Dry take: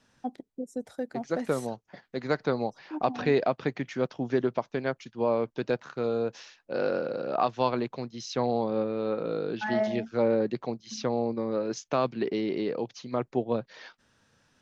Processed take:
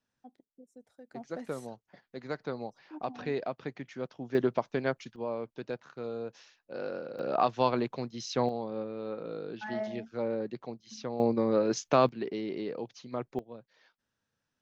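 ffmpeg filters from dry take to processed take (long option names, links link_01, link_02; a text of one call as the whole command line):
ffmpeg -i in.wav -af "asetnsamples=nb_out_samples=441:pad=0,asendcmd='1.11 volume volume -9dB;4.35 volume volume -0.5dB;5.16 volume volume -9dB;7.19 volume volume -0.5dB;8.49 volume volume -8dB;11.2 volume volume 3dB;12.09 volume volume -6dB;13.39 volume volume -18dB',volume=-19dB" out.wav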